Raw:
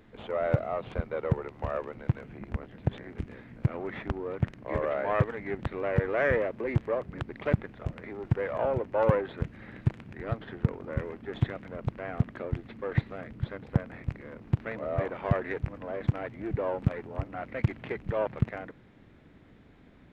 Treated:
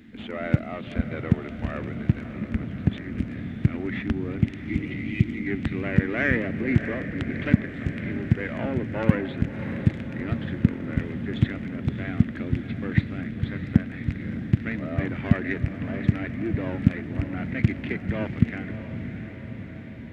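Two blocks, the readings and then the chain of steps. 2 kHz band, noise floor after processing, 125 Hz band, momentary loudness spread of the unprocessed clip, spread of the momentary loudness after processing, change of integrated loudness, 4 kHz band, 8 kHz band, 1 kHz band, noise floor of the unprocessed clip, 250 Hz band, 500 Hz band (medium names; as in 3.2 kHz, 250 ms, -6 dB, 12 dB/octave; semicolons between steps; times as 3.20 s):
+6.5 dB, -38 dBFS, +5.5 dB, 10 LU, 8 LU, +5.0 dB, +7.5 dB, no reading, -4.0 dB, -56 dBFS, +11.0 dB, -3.5 dB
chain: high-pass 47 Hz; spectral selection erased 4.43–5.46 s, 380–1900 Hz; ten-band graphic EQ 125 Hz -4 dB, 250 Hz +11 dB, 500 Hz -12 dB, 1 kHz -12 dB, 2 kHz +4 dB; on a send: echo that smears into a reverb 632 ms, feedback 66%, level -10 dB; on the sum: trim +6.5 dB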